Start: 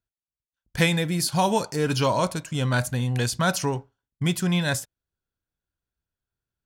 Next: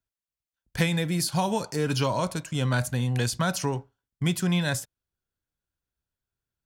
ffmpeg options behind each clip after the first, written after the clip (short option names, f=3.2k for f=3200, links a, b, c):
-filter_complex "[0:a]acrossover=split=200[a][b];[b]acompressor=threshold=-23dB:ratio=3[c];[a][c]amix=inputs=2:normalize=0,volume=-1dB"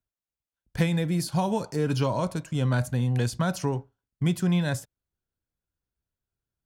-af "tiltshelf=f=1.1k:g=4,volume=-2.5dB"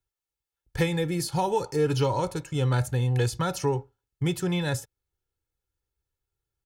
-af "aecho=1:1:2.3:0.74"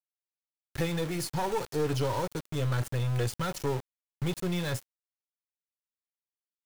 -af "aeval=exprs='(tanh(12.6*val(0)+0.45)-tanh(0.45))/12.6':c=same,aeval=exprs='val(0)*gte(abs(val(0)),0.0188)':c=same,volume=-1dB"